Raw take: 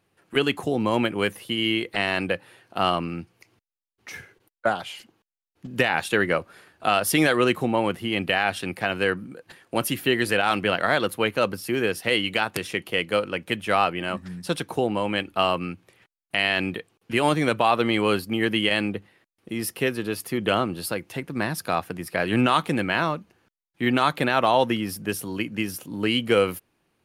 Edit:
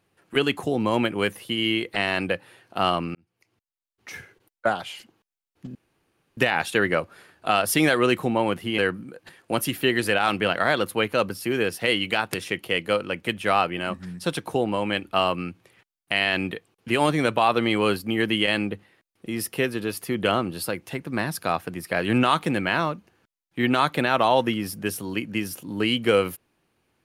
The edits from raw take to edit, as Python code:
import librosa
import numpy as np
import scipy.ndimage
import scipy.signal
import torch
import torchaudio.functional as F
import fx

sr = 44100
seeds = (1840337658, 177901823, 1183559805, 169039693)

y = fx.edit(x, sr, fx.fade_in_span(start_s=3.15, length_s=1.0),
    fx.insert_room_tone(at_s=5.75, length_s=0.62),
    fx.cut(start_s=8.16, length_s=0.85), tone=tone)